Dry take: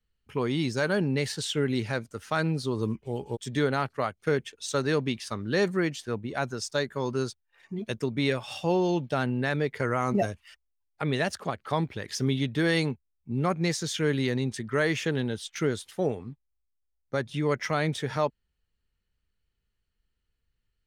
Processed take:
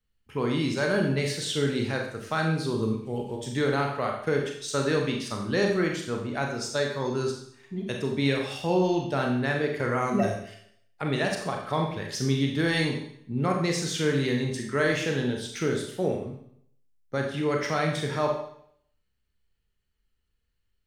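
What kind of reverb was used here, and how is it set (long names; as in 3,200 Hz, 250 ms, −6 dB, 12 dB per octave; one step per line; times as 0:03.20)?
four-comb reverb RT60 0.66 s, combs from 29 ms, DRR 1 dB
level −1 dB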